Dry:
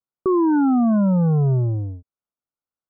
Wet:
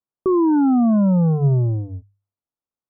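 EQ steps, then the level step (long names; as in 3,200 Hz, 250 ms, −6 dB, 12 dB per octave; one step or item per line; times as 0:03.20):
low-pass filter 1,300 Hz 24 dB per octave
high-frequency loss of the air 410 metres
mains-hum notches 50/100/150 Hz
+2.0 dB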